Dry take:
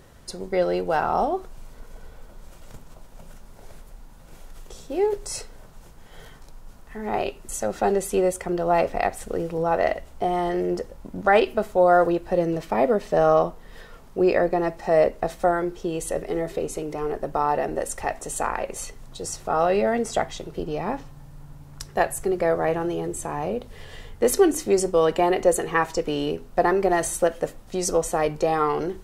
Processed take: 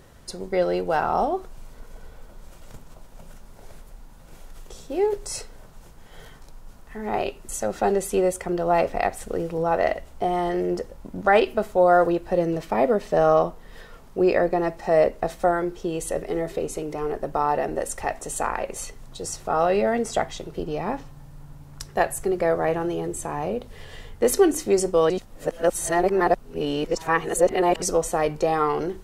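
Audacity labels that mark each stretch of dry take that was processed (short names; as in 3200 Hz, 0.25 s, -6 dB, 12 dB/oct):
25.100000	27.820000	reverse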